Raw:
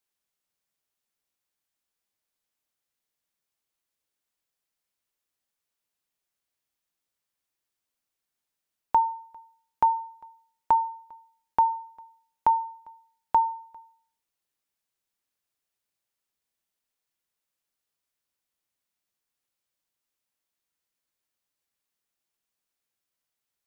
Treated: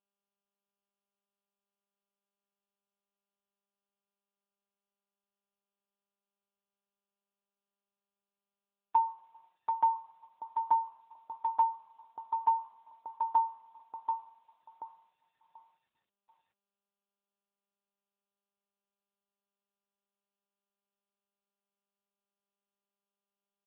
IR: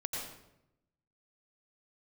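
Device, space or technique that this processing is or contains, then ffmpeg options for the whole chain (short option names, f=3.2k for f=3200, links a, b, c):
mobile call with aggressive noise cancelling: -filter_complex "[0:a]highpass=f=120:p=1,asplit=2[a][b];[b]adelay=736,lowpass=f=1.9k:p=1,volume=-5.5dB,asplit=2[c][d];[d]adelay=736,lowpass=f=1.9k:p=1,volume=0.31,asplit=2[e][f];[f]adelay=736,lowpass=f=1.9k:p=1,volume=0.31,asplit=2[g][h];[h]adelay=736,lowpass=f=1.9k:p=1,volume=0.31[i];[a][c][e][g][i]amix=inputs=5:normalize=0,afftdn=nr=15:nf=-52,volume=-4dB" -ar 8000 -c:a libopencore_amrnb -b:a 10200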